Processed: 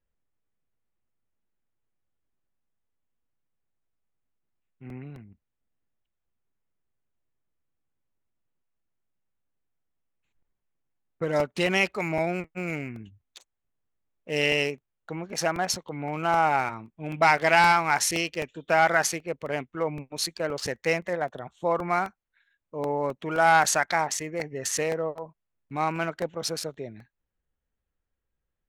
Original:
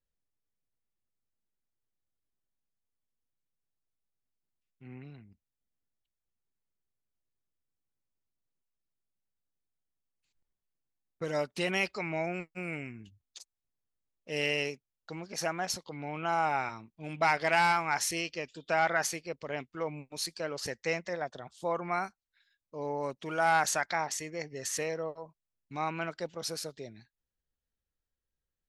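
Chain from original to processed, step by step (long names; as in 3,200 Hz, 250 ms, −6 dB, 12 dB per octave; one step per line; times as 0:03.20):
adaptive Wiener filter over 9 samples
regular buffer underruns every 0.26 s, samples 64, repeat, from 0:00.48
level +7 dB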